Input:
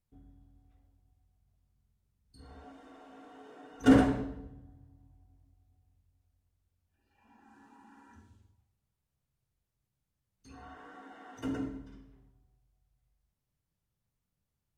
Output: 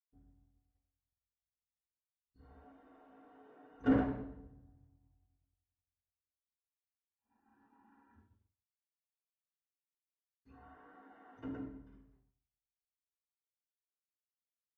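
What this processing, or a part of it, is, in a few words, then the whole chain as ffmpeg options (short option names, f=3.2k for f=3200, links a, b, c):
hearing-loss simulation: -af "lowpass=2k,agate=range=-33dB:threshold=-55dB:ratio=3:detection=peak,volume=-8dB"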